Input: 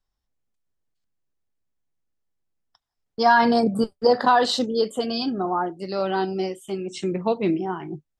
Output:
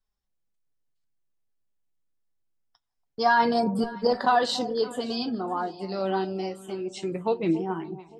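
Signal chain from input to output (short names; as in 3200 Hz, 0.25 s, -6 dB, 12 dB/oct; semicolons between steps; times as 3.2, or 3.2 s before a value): flange 0.25 Hz, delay 4.5 ms, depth 6.3 ms, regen +52%; echo with dull and thin repeats by turns 0.284 s, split 850 Hz, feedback 52%, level -13.5 dB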